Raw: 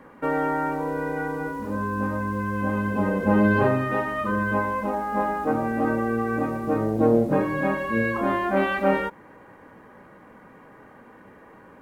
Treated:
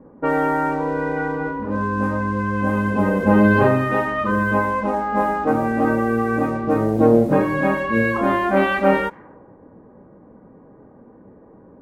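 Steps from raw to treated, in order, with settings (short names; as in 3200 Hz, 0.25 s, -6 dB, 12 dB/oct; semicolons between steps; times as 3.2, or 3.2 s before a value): low-pass opened by the level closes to 440 Hz, open at -20.5 dBFS; gain +5 dB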